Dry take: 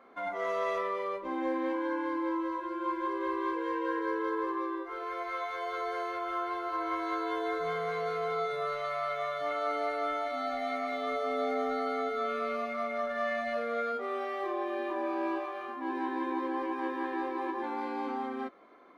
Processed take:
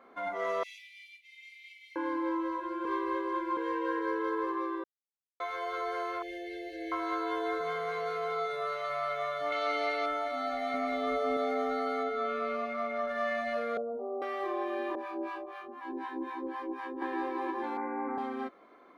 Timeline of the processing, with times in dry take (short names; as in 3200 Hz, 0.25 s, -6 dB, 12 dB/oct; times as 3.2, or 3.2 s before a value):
0.63–1.96 brick-wall FIR high-pass 2000 Hz
2.85–3.57 reverse
4.84–5.4 mute
6.22–6.92 brick-wall FIR band-stop 690–1600 Hz
7.61–8.9 low shelf 210 Hz -9.5 dB
9.52–10.06 band shelf 3500 Hz +8.5 dB
10.74–11.37 low shelf 290 Hz +9 dB
12.03–13.08 high shelf 6600 Hz -10 dB
13.77–14.22 steep low-pass 930 Hz 48 dB/oct
14.95–17.02 harmonic tremolo 4 Hz, depth 100%, crossover 710 Hz
17.77–18.18 steep low-pass 2300 Hz 96 dB/oct